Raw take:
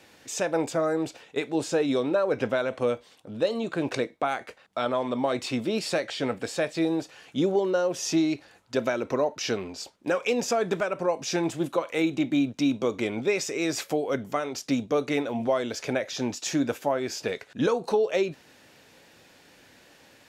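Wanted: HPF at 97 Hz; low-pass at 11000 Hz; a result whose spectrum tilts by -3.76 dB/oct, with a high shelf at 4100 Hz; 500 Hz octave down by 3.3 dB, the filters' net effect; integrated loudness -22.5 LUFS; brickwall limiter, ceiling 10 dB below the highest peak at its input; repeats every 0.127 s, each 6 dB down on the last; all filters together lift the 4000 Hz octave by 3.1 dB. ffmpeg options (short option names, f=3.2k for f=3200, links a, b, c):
-af "highpass=97,lowpass=11k,equalizer=f=500:t=o:g=-4,equalizer=f=4k:t=o:g=6,highshelf=f=4.1k:g=-3.5,alimiter=limit=-22dB:level=0:latency=1,aecho=1:1:127|254|381|508|635|762:0.501|0.251|0.125|0.0626|0.0313|0.0157,volume=9dB"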